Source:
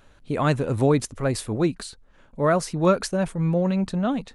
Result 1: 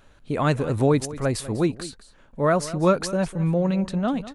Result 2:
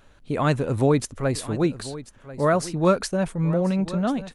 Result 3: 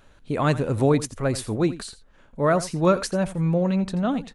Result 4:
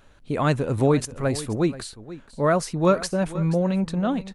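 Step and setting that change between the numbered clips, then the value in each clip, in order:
single-tap delay, delay time: 198, 1,040, 85, 480 milliseconds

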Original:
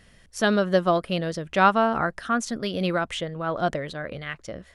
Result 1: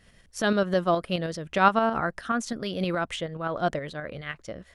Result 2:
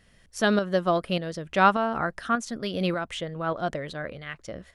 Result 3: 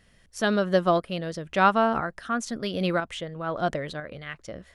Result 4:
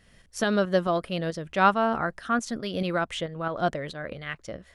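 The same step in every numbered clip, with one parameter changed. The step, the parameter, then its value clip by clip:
shaped tremolo, speed: 9.5, 1.7, 1, 4.6 Hertz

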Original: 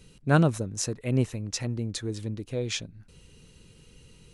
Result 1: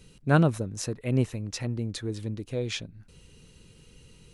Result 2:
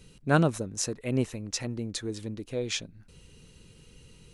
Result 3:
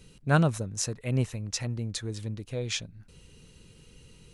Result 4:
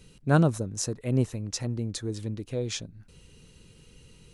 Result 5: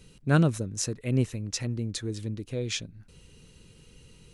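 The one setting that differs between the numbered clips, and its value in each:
dynamic equaliser, frequency: 6,900, 110, 320, 2,400, 820 Hertz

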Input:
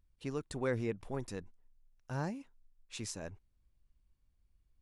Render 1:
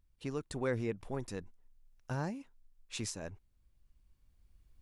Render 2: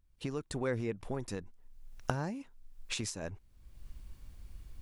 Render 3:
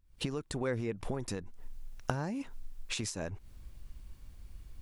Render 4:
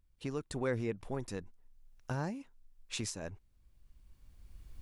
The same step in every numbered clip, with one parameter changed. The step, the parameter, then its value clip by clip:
camcorder AGC, rising by: 5.2, 32, 87, 13 dB per second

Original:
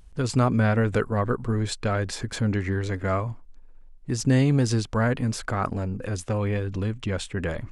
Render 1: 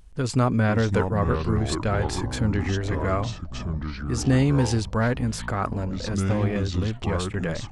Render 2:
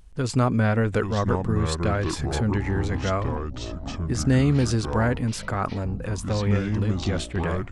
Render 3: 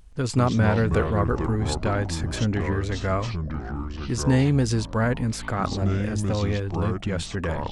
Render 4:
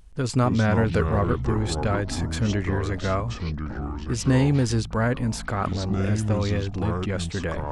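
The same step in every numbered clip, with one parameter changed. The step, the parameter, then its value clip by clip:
delay with pitch and tempo change per echo, delay time: 437, 772, 121, 199 milliseconds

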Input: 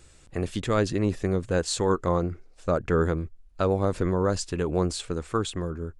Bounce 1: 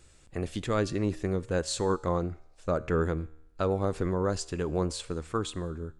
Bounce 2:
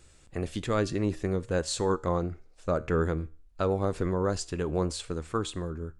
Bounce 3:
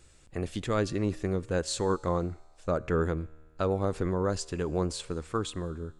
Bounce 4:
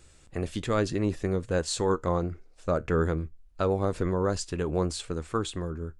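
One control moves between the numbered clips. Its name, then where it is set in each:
tuned comb filter, decay: 0.86, 0.41, 1.8, 0.17 seconds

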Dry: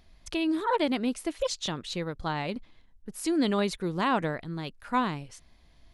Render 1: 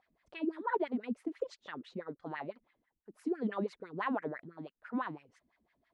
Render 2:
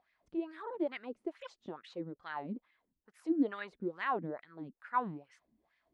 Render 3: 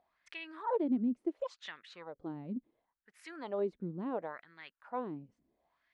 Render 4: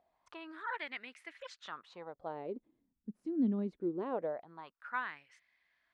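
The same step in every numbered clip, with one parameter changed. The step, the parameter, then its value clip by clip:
LFO wah, speed: 6, 2.3, 0.71, 0.23 Hertz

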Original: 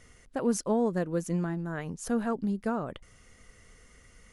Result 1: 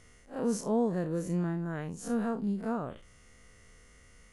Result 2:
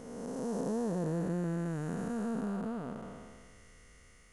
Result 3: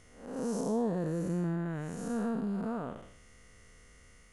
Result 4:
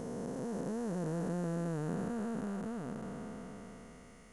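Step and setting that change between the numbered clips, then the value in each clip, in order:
spectrum smeared in time, width: 92, 714, 265, 1,810 milliseconds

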